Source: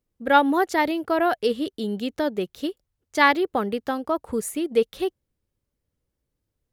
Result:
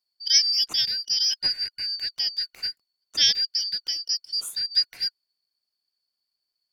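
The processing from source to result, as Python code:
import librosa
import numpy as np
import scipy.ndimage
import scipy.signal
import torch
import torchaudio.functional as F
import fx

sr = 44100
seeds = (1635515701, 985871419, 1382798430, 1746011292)

y = fx.band_shuffle(x, sr, order='4321')
y = y * librosa.db_to_amplitude(-2.5)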